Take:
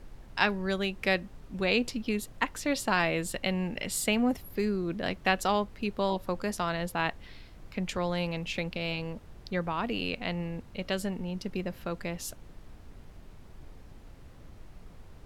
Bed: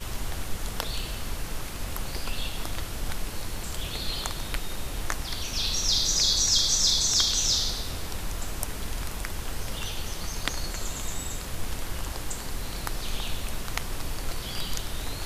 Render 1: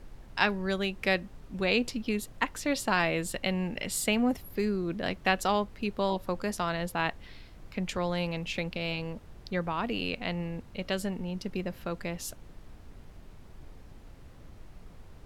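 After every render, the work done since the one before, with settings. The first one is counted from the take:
no processing that can be heard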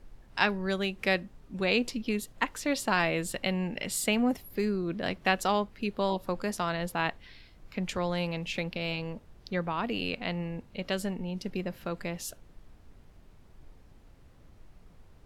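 noise reduction from a noise print 6 dB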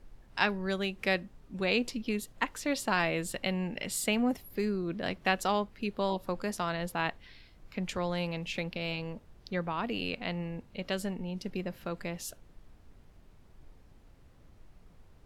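level −2 dB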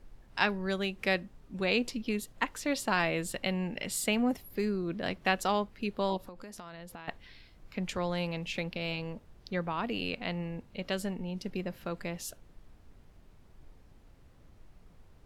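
0:06.17–0:07.08: downward compressor 16 to 1, threshold −41 dBFS

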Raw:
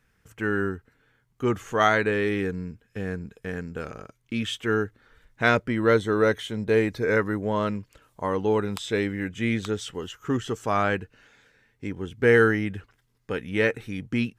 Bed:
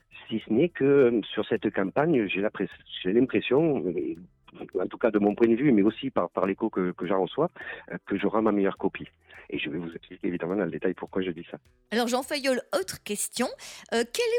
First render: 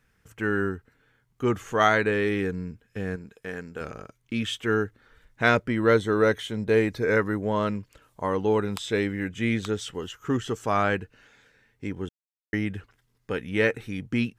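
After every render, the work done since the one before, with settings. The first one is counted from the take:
0:03.16–0:03.81: low-shelf EQ 190 Hz −11.5 dB
0:12.09–0:12.53: silence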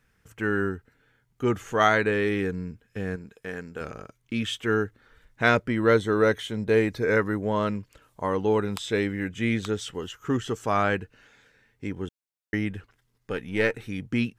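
0:00.68–0:01.77: notch filter 1,100 Hz
0:12.70–0:13.79: gain on one half-wave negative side −3 dB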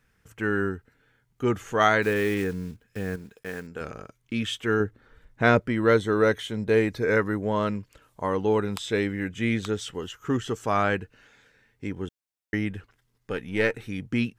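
0:02.02–0:03.68: one scale factor per block 5 bits
0:04.80–0:05.62: tilt shelving filter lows +4 dB, about 1,200 Hz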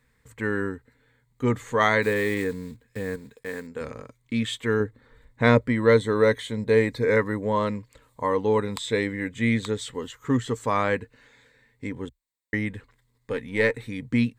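EQ curve with evenly spaced ripples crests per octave 1, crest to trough 9 dB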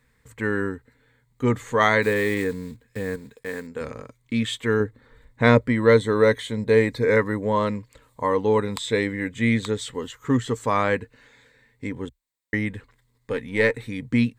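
level +2 dB

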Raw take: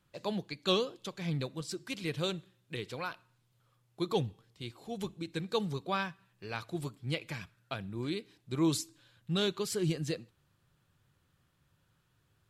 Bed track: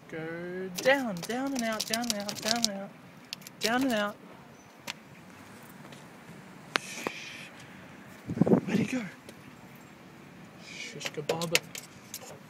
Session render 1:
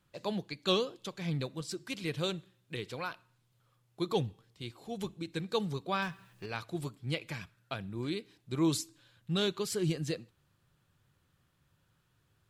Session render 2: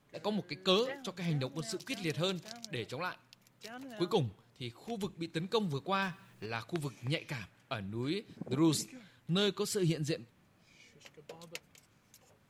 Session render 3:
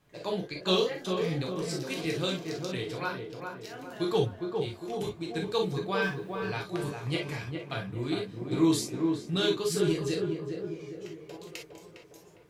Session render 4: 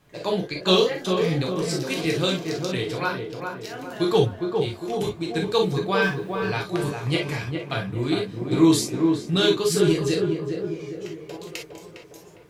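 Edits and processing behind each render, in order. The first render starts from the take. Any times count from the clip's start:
0:06.02–0:06.46: mu-law and A-law mismatch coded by mu
mix in bed track −19.5 dB
on a send: tape delay 408 ms, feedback 59%, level −3 dB, low-pass 1,200 Hz; on the sum: reverb whose tail is shaped and stops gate 80 ms flat, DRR −0.5 dB
level +7.5 dB

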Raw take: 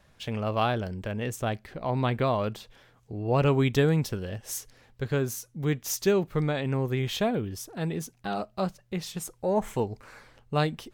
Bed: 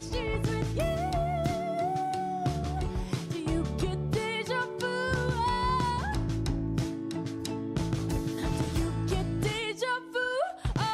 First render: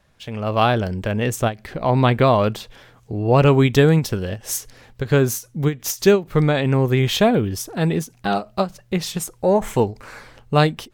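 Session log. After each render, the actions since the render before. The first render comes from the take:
automatic gain control gain up to 11 dB
every ending faded ahead of time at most 260 dB per second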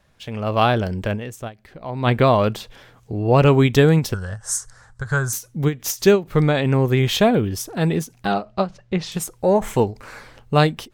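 0:01.14–0:02.08: duck −11.5 dB, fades 0.36 s exponential
0:04.14–0:05.33: drawn EQ curve 110 Hz 0 dB, 200 Hz −8 dB, 280 Hz −18 dB, 1,500 Hz +6 dB, 2,500 Hz −17 dB, 8,400 Hz +7 dB, 15,000 Hz −22 dB
0:08.32–0:09.12: high-frequency loss of the air 110 metres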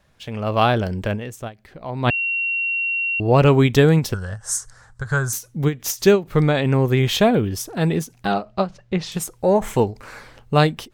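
0:02.10–0:03.20: beep over 2,740 Hz −19.5 dBFS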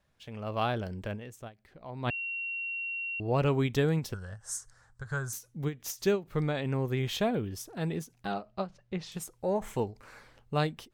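level −13 dB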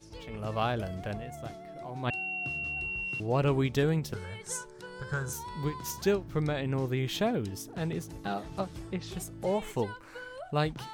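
mix in bed −14 dB

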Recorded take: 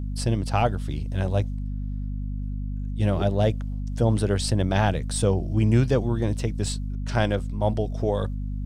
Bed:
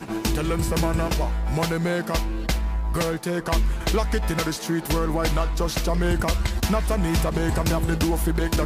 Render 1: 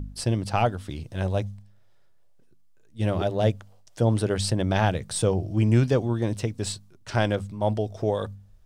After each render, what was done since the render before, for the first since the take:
hum removal 50 Hz, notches 5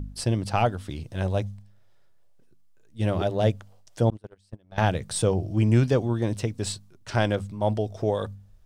0:04.10–0:04.78: noise gate −20 dBFS, range −37 dB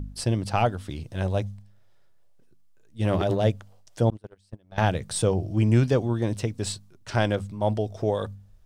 0:03.05–0:03.45: transient designer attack −2 dB, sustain +10 dB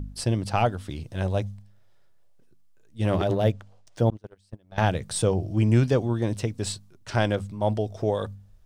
0:03.26–0:04.23: linearly interpolated sample-rate reduction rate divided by 3×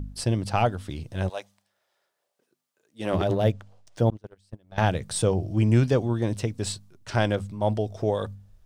0:01.28–0:03.12: high-pass filter 810 Hz → 250 Hz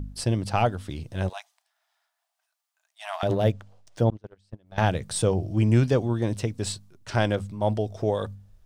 0:01.33–0:03.23: linear-phase brick-wall high-pass 620 Hz
0:04.04–0:04.66: high-frequency loss of the air 58 metres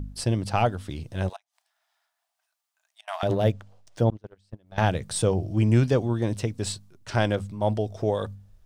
0:01.36–0:03.08: gate with flip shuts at −34 dBFS, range −27 dB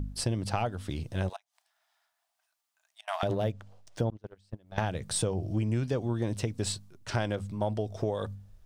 downward compressor 6 to 1, threshold −26 dBFS, peak gain reduction 11 dB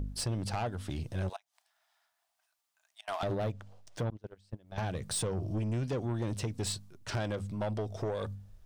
soft clipping −27.5 dBFS, distortion −11 dB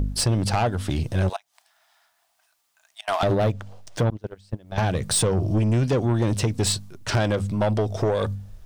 level +12 dB

